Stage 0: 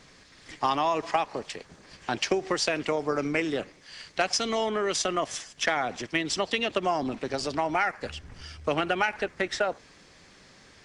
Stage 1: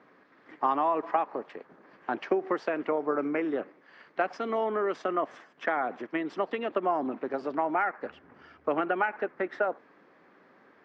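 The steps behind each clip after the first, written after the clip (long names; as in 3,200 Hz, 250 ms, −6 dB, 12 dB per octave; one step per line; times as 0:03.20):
Chebyshev band-pass filter 270–1,400 Hz, order 2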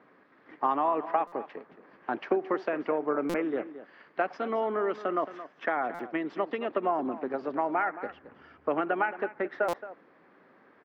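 high-frequency loss of the air 130 metres
single-tap delay 221 ms −14 dB
buffer that repeats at 0:01.27/0:03.29/0:05.94/0:09.68, samples 256, times 8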